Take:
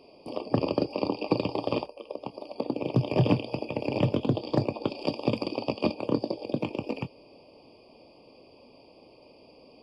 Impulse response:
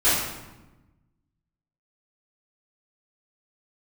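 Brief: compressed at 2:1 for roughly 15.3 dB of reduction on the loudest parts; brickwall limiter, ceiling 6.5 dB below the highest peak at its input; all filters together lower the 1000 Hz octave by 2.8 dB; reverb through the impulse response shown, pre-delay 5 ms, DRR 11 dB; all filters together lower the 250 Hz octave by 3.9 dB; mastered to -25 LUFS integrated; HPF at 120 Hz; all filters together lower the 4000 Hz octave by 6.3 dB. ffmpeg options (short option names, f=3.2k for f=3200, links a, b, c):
-filter_complex "[0:a]highpass=120,equalizer=f=250:t=o:g=-4.5,equalizer=f=1k:t=o:g=-3,equalizer=f=4k:t=o:g=-8.5,acompressor=threshold=-52dB:ratio=2,alimiter=level_in=9.5dB:limit=-24dB:level=0:latency=1,volume=-9.5dB,asplit=2[a][b];[1:a]atrim=start_sample=2205,adelay=5[c];[b][c]afir=irnorm=-1:irlink=0,volume=-28.5dB[d];[a][d]amix=inputs=2:normalize=0,volume=24dB"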